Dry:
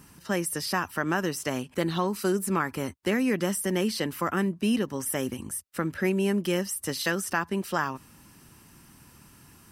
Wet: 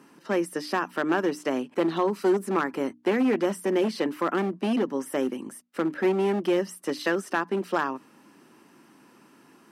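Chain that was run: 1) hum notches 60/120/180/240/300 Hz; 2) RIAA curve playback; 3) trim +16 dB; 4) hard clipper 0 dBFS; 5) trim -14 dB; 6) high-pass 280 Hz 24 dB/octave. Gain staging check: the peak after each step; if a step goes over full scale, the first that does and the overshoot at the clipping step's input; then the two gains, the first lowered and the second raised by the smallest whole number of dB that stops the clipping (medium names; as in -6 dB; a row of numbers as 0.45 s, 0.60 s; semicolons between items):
-11.5 dBFS, -10.0 dBFS, +6.0 dBFS, 0.0 dBFS, -14.0 dBFS, -11.0 dBFS; step 3, 6.0 dB; step 3 +10 dB, step 5 -8 dB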